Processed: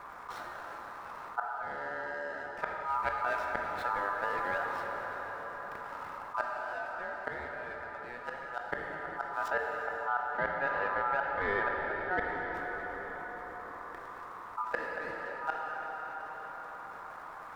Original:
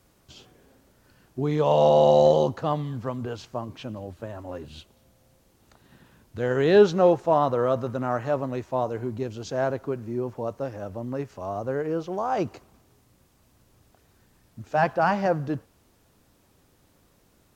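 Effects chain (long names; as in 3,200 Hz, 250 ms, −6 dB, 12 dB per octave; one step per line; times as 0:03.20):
running median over 25 samples
0:09.48–0:12.25: low-pass filter 3,100 Hz 12 dB per octave
gate with flip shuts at −21 dBFS, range −32 dB
ring modulation 1,100 Hz
dense smooth reverb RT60 4.2 s, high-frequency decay 0.75×, pre-delay 0 ms, DRR 3.5 dB
envelope flattener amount 50%
level +1 dB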